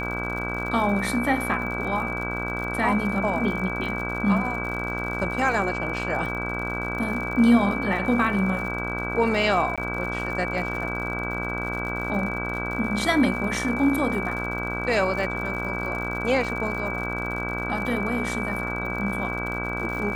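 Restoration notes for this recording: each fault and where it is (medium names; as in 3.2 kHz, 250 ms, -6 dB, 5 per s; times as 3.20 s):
buzz 60 Hz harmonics 27 -31 dBFS
crackle 87 per s -33 dBFS
whine 2.3 kHz -30 dBFS
9.76–9.78 s: dropout 16 ms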